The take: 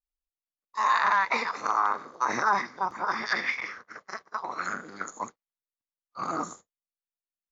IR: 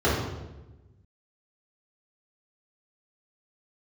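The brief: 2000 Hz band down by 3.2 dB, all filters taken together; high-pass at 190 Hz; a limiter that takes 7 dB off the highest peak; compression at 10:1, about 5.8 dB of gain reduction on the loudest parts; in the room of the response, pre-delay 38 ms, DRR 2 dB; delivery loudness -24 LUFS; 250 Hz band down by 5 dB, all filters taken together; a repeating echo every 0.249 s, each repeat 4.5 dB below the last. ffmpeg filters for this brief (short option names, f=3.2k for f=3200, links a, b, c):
-filter_complex "[0:a]highpass=190,equalizer=f=250:t=o:g=-5,equalizer=f=2k:t=o:g=-4,acompressor=threshold=-26dB:ratio=10,alimiter=limit=-22.5dB:level=0:latency=1,aecho=1:1:249|498|747|996|1245|1494|1743|1992|2241:0.596|0.357|0.214|0.129|0.0772|0.0463|0.0278|0.0167|0.01,asplit=2[a][b];[1:a]atrim=start_sample=2205,adelay=38[c];[b][c]afir=irnorm=-1:irlink=0,volume=-19.5dB[d];[a][d]amix=inputs=2:normalize=0,volume=8dB"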